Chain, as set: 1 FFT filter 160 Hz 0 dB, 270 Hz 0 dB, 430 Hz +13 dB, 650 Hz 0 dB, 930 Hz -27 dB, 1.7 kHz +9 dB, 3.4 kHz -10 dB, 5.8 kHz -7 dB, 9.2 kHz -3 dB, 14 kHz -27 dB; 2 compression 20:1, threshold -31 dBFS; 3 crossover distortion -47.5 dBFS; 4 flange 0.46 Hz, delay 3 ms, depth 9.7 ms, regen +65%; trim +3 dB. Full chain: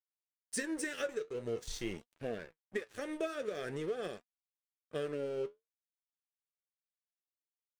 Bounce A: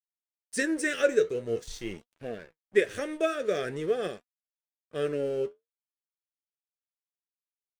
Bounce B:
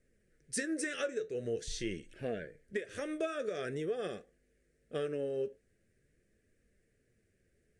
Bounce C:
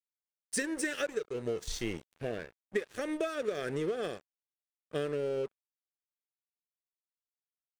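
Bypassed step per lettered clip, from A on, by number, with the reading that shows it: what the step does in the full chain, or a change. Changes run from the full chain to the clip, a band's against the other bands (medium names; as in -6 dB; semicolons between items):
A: 2, mean gain reduction 6.0 dB; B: 3, distortion -15 dB; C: 4, loudness change +4.0 LU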